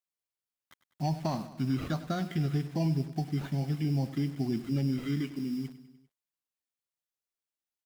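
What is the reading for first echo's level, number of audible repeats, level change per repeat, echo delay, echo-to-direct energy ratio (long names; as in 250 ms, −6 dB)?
−15.0 dB, 4, −4.5 dB, 99 ms, −13.0 dB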